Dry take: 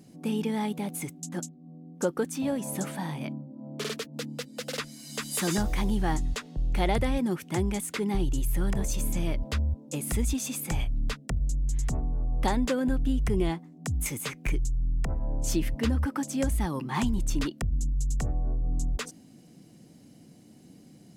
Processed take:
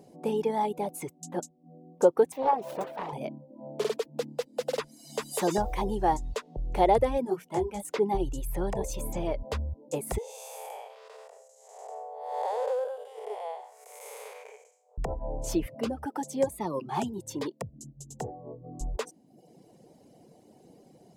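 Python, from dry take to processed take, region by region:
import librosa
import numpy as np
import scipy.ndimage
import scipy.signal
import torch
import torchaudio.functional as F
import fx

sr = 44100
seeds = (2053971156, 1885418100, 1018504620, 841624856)

y = fx.chain(x, sr, fx.self_delay(depth_ms=0.83),
    fx.bass_treble(bass_db=-8, treble_db=-10), at=(2.32, 3.13))
y = fx.chain(y, sr, fx.hum_notches(base_hz=60, count=3),
    fx.detune_double(cents=31), at=(7.25, 7.85))
y = fx.chain(y, sr, fx.spec_blur(span_ms=316.0),
    fx.brickwall_highpass(low_hz=410.0),
    fx.peak_eq(hz=710.0, db=3.5, octaves=0.8), at=(10.18, 14.98))
y = fx.chain(y, sr, fx.highpass(hz=110.0, slope=24),
    fx.notch_cascade(direction='rising', hz=1.0), at=(15.66, 18.81))
y = fx.dereverb_blind(y, sr, rt60_s=0.72)
y = fx.band_shelf(y, sr, hz=610.0, db=13.0, octaves=1.7)
y = F.gain(torch.from_numpy(y), -4.5).numpy()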